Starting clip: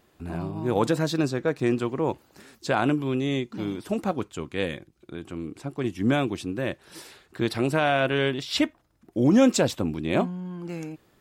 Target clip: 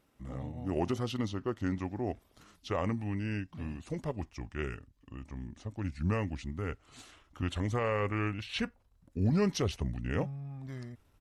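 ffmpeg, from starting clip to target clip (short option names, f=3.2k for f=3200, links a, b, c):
-af "asetrate=34006,aresample=44100,atempo=1.29684,asubboost=boost=5.5:cutoff=81,volume=-8dB"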